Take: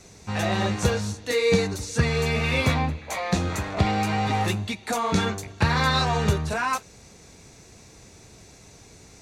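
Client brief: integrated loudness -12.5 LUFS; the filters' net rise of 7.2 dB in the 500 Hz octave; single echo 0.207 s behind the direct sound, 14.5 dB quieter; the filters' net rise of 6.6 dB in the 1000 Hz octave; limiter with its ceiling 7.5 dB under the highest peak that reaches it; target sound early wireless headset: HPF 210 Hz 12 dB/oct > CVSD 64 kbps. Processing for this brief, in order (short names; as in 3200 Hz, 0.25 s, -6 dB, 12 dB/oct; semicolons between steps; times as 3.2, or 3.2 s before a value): bell 500 Hz +7 dB; bell 1000 Hz +6 dB; limiter -12 dBFS; HPF 210 Hz 12 dB/oct; echo 0.207 s -14.5 dB; CVSD 64 kbps; gain +10.5 dB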